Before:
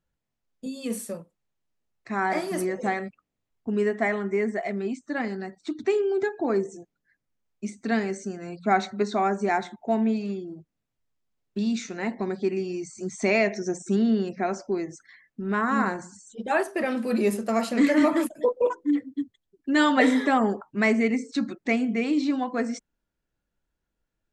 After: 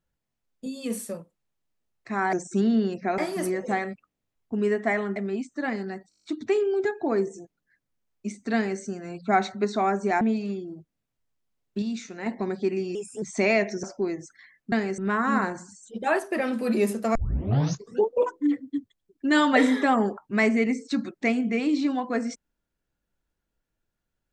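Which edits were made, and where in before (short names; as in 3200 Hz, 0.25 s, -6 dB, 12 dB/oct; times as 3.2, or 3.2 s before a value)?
4.31–4.68 cut
5.62 stutter 0.02 s, 8 plays
7.92–8.18 copy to 15.42
9.59–10.01 cut
11.62–12.06 gain -4.5 dB
12.75–13.07 speed 118%
13.68–14.53 move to 2.33
17.59 tape start 1.01 s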